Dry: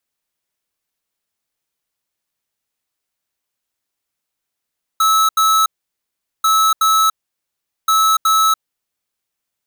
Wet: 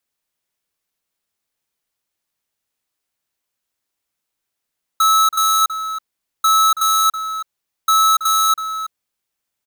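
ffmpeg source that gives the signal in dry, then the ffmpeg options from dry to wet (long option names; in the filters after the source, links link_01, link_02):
-f lavfi -i "aevalsrc='0.224*(2*lt(mod(1300*t,1),0.5)-1)*clip(min(mod(mod(t,1.44),0.37),0.29-mod(mod(t,1.44),0.37))/0.005,0,1)*lt(mod(t,1.44),0.74)':duration=4.32:sample_rate=44100"
-filter_complex "[0:a]asplit=2[link_01][link_02];[link_02]adelay=326.5,volume=-10dB,highshelf=frequency=4000:gain=-7.35[link_03];[link_01][link_03]amix=inputs=2:normalize=0"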